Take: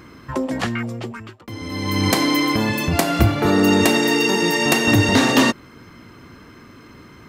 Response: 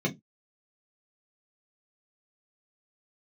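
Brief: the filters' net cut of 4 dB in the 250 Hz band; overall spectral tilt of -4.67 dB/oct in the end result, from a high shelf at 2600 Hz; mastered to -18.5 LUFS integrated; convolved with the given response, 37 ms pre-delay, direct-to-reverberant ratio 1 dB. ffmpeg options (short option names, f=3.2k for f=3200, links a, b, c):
-filter_complex "[0:a]equalizer=f=250:t=o:g=-5,highshelf=f=2.6k:g=5,asplit=2[a][b];[1:a]atrim=start_sample=2205,adelay=37[c];[b][c]afir=irnorm=-1:irlink=0,volume=-9.5dB[d];[a][d]amix=inputs=2:normalize=0,volume=-5.5dB"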